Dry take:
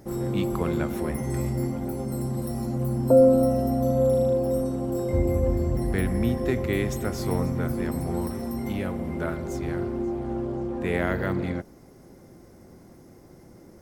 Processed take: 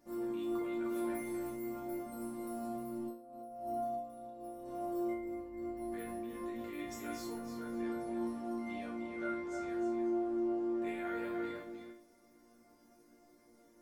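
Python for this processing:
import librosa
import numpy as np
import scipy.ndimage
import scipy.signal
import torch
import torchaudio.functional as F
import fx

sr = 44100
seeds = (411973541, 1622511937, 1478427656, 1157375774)

y = fx.lowpass(x, sr, hz=7800.0, slope=12, at=(7.44, 9.68))
y = y + 10.0 ** (-7.5 / 20.0) * np.pad(y, (int(307 * sr / 1000.0), 0))[:len(y)]
y = fx.over_compress(y, sr, threshold_db=-26.0, ratio=-1.0)
y = fx.low_shelf(y, sr, hz=270.0, db=-9.0)
y = fx.resonator_bank(y, sr, root=58, chord='major', decay_s=0.43)
y = y * librosa.db_to_amplitude(5.5)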